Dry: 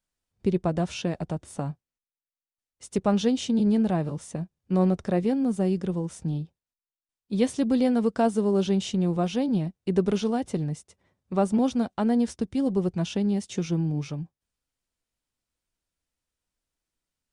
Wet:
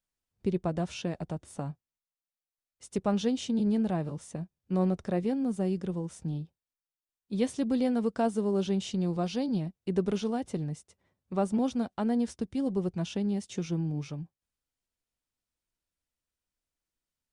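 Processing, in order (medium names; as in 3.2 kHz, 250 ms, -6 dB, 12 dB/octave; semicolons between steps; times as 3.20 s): 8.91–9.60 s: peaking EQ 4.6 kHz +9.5 dB 0.31 oct; trim -5 dB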